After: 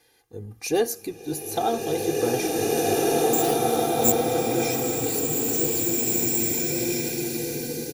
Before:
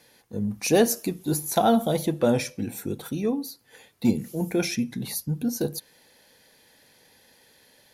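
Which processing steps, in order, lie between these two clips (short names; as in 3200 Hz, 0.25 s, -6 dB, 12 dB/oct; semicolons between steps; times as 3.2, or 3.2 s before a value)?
comb 2.5 ms, depth 78%; 3.33–4.12 careless resampling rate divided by 6×, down none, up zero stuff; bloom reverb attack 2.33 s, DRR -6 dB; gain -6 dB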